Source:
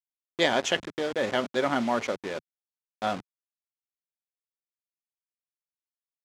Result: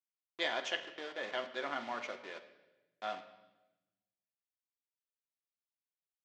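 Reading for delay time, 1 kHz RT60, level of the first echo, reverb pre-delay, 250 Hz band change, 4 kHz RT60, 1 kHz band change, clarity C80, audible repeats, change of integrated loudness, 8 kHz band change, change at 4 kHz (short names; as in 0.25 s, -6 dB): none, 0.95 s, none, 3 ms, -19.0 dB, 1.0 s, -11.0 dB, 13.5 dB, none, -11.5 dB, -15.5 dB, -9.0 dB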